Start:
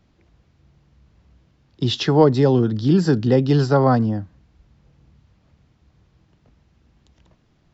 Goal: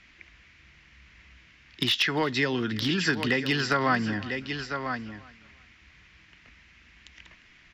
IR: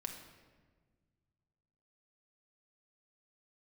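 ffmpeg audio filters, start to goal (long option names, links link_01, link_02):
-filter_complex "[0:a]lowpass=5800,highshelf=frequency=1500:width_type=q:width=1.5:gain=13.5,bandreject=frequency=820:width=12,asplit=2[link_01][link_02];[link_02]aecho=0:1:996:0.178[link_03];[link_01][link_03]amix=inputs=2:normalize=0,acompressor=threshold=-20dB:ratio=8,asoftclip=type=hard:threshold=-14.5dB,equalizer=frequency=125:width_type=o:width=1:gain=-9,equalizer=frequency=500:width_type=o:width=1:gain=-5,equalizer=frequency=1000:width_type=o:width=1:gain=6,equalizer=frequency=2000:width_type=o:width=1:gain=7,equalizer=frequency=4000:width_type=o:width=1:gain=-6,asplit=2[link_04][link_05];[link_05]aecho=0:1:351|702:0.0891|0.0232[link_06];[link_04][link_06]amix=inputs=2:normalize=0"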